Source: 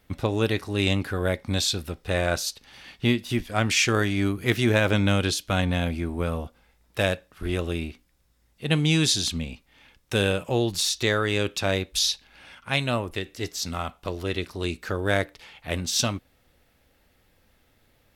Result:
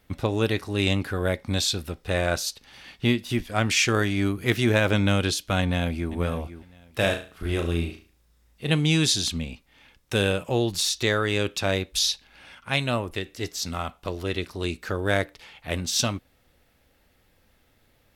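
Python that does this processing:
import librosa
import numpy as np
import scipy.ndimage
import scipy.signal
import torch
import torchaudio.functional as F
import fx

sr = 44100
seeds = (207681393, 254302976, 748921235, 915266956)

y = fx.echo_throw(x, sr, start_s=5.61, length_s=0.51, ms=500, feedback_pct=20, wet_db=-13.0)
y = fx.room_flutter(y, sr, wall_m=6.1, rt60_s=0.37, at=(7.0, 8.71), fade=0.02)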